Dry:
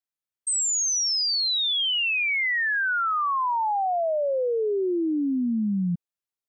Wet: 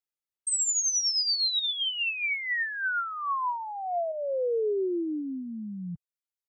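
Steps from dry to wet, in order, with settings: comb 2.4 ms, depth 42%; 1.59–4.12 s: compressor with a negative ratio -26 dBFS, ratio -0.5; reverb removal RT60 1.9 s; trim -3 dB

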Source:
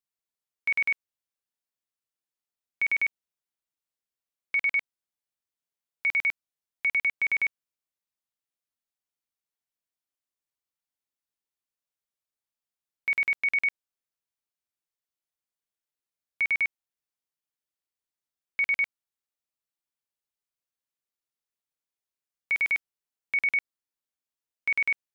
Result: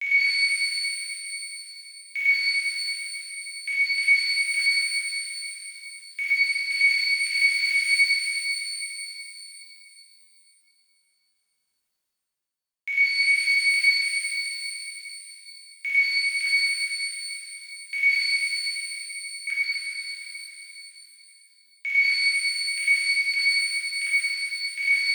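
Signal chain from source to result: slices played last to first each 330 ms, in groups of 3; steep high-pass 1.7 kHz 36 dB/octave; treble shelf 2.8 kHz +6.5 dB; peak limiter -22.5 dBFS, peak gain reduction 5.5 dB; reverse; upward compressor, threshold -42 dBFS; reverse; crossover distortion -54 dBFS; pitch-shifted reverb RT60 3.4 s, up +12 st, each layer -8 dB, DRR -10 dB; trim -1.5 dB

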